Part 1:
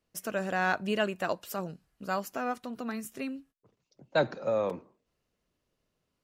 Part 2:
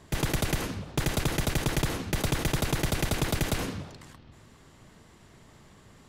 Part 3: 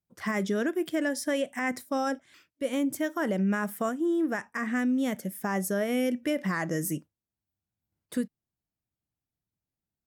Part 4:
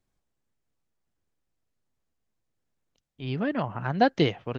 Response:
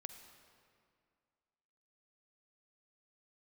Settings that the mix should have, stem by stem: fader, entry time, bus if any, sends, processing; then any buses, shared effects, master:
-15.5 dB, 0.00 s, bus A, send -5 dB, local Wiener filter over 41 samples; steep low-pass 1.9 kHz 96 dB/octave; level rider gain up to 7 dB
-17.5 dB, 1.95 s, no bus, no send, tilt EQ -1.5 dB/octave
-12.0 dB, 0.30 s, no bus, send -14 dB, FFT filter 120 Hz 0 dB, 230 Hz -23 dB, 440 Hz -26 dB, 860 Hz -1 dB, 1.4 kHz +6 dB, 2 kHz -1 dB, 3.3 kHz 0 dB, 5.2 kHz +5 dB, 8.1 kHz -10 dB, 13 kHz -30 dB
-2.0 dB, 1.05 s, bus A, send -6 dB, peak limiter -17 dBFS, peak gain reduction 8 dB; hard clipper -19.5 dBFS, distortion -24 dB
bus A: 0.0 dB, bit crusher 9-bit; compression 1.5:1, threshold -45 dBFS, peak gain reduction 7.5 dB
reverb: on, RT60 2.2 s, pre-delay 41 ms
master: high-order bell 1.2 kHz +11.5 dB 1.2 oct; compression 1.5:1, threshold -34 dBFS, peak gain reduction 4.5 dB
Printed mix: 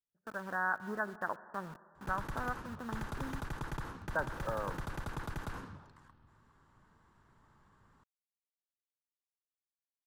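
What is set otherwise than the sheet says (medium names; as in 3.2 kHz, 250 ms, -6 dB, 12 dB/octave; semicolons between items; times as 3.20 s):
stem 3: muted; stem 4: muted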